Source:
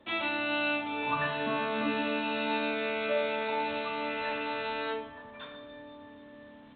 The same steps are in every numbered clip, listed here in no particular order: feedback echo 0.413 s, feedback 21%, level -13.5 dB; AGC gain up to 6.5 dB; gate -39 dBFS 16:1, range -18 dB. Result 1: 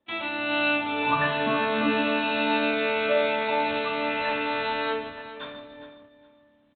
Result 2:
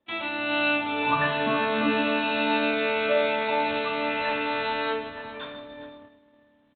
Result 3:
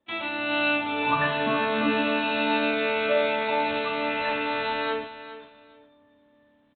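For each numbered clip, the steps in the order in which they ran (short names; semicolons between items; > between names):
AGC > gate > feedback echo; AGC > feedback echo > gate; gate > AGC > feedback echo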